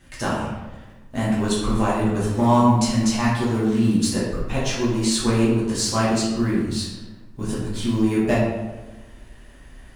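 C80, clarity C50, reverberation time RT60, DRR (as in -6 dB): 3.0 dB, 0.5 dB, 1.2 s, -8.5 dB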